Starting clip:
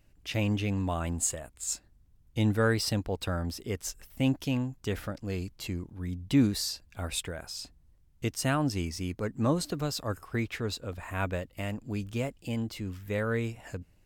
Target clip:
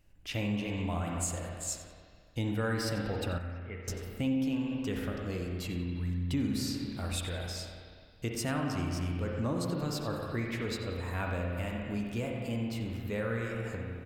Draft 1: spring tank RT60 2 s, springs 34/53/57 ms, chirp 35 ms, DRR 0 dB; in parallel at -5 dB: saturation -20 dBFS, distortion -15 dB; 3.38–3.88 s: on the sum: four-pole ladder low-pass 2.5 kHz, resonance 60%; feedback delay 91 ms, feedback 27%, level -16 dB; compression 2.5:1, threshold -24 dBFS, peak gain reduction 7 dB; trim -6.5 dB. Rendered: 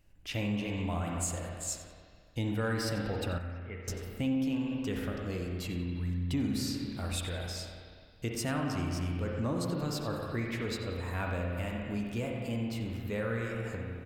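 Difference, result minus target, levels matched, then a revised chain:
saturation: distortion +17 dB
spring tank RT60 2 s, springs 34/53/57 ms, chirp 35 ms, DRR 0 dB; in parallel at -5 dB: saturation -9 dBFS, distortion -32 dB; 3.38–3.88 s: on the sum: four-pole ladder low-pass 2.5 kHz, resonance 60%; feedback delay 91 ms, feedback 27%, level -16 dB; compression 2.5:1, threshold -24 dBFS, peak gain reduction 7.5 dB; trim -6.5 dB

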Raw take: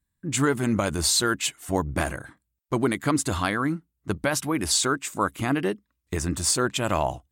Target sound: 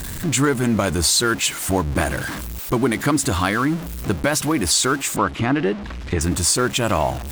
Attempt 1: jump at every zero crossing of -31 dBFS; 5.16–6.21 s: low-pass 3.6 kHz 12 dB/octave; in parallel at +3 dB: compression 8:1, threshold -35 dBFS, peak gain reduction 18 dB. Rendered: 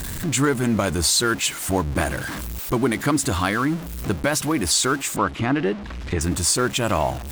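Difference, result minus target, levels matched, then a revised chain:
compression: peak gain reduction +6.5 dB
jump at every zero crossing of -31 dBFS; 5.16–6.21 s: low-pass 3.6 kHz 12 dB/octave; in parallel at +3 dB: compression 8:1, threshold -27.5 dBFS, peak gain reduction 11.5 dB

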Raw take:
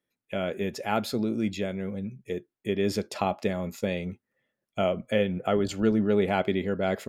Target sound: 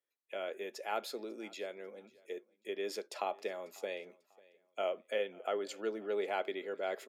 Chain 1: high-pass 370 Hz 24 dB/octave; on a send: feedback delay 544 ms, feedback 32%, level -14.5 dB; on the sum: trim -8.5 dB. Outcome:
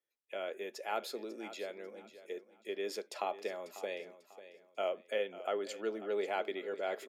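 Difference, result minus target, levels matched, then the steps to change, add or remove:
echo-to-direct +9.5 dB
change: feedback delay 544 ms, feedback 32%, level -24 dB

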